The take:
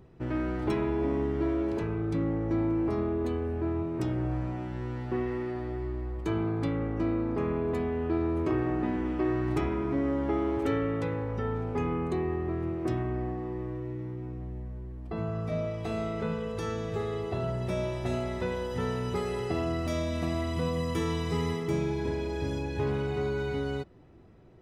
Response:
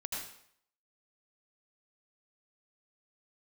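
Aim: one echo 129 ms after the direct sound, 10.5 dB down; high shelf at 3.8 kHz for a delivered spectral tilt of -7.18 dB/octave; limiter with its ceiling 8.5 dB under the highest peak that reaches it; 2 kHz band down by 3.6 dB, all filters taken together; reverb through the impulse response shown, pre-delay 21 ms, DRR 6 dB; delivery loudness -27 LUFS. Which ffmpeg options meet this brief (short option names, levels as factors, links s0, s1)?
-filter_complex "[0:a]equalizer=f=2000:t=o:g=-5.5,highshelf=f=3800:g=4,alimiter=level_in=1.19:limit=0.0631:level=0:latency=1,volume=0.841,aecho=1:1:129:0.299,asplit=2[s0][s1];[1:a]atrim=start_sample=2205,adelay=21[s2];[s1][s2]afir=irnorm=-1:irlink=0,volume=0.422[s3];[s0][s3]amix=inputs=2:normalize=0,volume=2"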